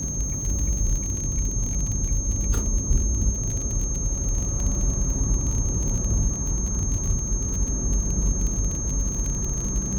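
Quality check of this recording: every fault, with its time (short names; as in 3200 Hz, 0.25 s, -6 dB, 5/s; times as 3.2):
crackle 37/s -27 dBFS
tone 6400 Hz -29 dBFS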